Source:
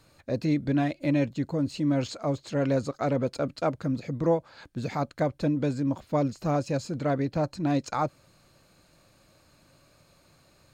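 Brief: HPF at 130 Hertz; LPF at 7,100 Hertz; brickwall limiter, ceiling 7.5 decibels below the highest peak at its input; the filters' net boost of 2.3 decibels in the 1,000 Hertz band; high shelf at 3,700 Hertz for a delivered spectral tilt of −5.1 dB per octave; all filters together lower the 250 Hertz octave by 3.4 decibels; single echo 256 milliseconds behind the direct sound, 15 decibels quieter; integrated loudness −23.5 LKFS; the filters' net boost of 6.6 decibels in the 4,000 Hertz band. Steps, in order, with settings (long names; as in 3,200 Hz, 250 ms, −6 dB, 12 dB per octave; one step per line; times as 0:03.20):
high-pass filter 130 Hz
low-pass filter 7,100 Hz
parametric band 250 Hz −4 dB
parametric band 1,000 Hz +3 dB
high-shelf EQ 3,700 Hz +7 dB
parametric band 4,000 Hz +3.5 dB
brickwall limiter −19 dBFS
single-tap delay 256 ms −15 dB
level +8 dB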